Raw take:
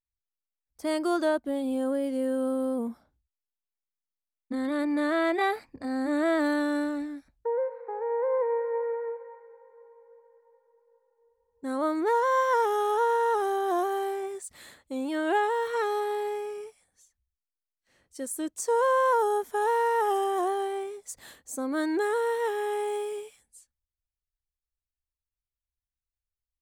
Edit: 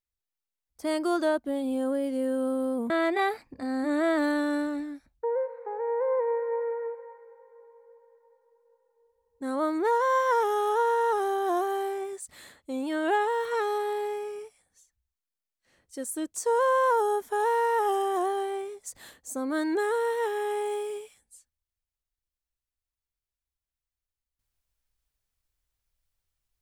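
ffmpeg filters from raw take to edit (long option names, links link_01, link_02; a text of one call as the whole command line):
ffmpeg -i in.wav -filter_complex "[0:a]asplit=2[link_01][link_02];[link_01]atrim=end=2.902[link_03];[link_02]atrim=start=5.118[link_04];[link_03][link_04]acrossfade=duration=0.004:curve1=hsin:curve2=hsin" out.wav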